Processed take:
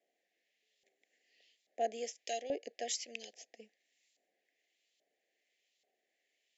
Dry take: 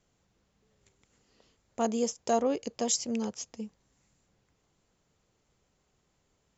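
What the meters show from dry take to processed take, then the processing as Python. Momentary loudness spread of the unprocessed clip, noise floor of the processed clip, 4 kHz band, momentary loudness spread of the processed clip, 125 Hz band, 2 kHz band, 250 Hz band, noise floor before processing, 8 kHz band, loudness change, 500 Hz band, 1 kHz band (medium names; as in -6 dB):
15 LU, -84 dBFS, -5.0 dB, 17 LU, under -20 dB, -2.0 dB, -20.0 dB, -75 dBFS, no reading, -9.0 dB, -8.5 dB, -8.0 dB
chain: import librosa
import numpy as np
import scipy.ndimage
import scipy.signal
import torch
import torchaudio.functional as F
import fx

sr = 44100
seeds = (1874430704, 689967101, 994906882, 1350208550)

y = scipy.signal.sosfilt(scipy.signal.butter(4, 270.0, 'highpass', fs=sr, output='sos'), x)
y = fx.filter_lfo_bandpass(y, sr, shape='saw_up', hz=1.2, low_hz=910.0, high_hz=3800.0, q=1.4)
y = scipy.signal.sosfilt(scipy.signal.ellip(3, 1.0, 40, [720.0, 1800.0], 'bandstop', fs=sr, output='sos'), y)
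y = y * 10.0 ** (4.0 / 20.0)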